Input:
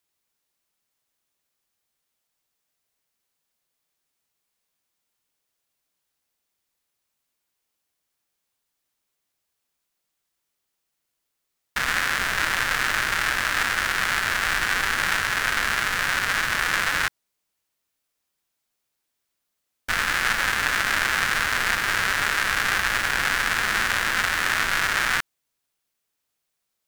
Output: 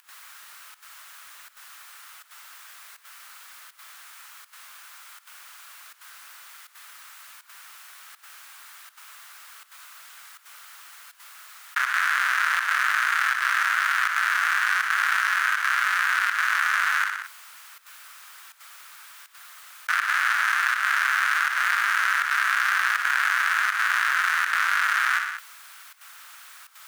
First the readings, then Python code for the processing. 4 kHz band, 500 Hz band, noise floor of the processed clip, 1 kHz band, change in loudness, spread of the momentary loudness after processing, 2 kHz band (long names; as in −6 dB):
−5.0 dB, below −15 dB, −55 dBFS, +2.0 dB, 0.0 dB, 4 LU, +1.0 dB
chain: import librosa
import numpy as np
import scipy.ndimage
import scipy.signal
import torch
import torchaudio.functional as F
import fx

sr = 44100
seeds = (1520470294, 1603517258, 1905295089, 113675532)

p1 = fx.sample_hold(x, sr, seeds[0], rate_hz=8000.0, jitter_pct=0)
p2 = x + (p1 * librosa.db_to_amplitude(-8.5))
p3 = fx.highpass_res(p2, sr, hz=1300.0, q=2.6)
p4 = fx.volume_shaper(p3, sr, bpm=81, per_beat=1, depth_db=-18, release_ms=83.0, shape='slow start')
p5 = p4 + fx.echo_feedback(p4, sr, ms=61, feedback_pct=35, wet_db=-17, dry=0)
p6 = fx.env_flatten(p5, sr, amount_pct=70)
y = p6 * librosa.db_to_amplitude(-9.0)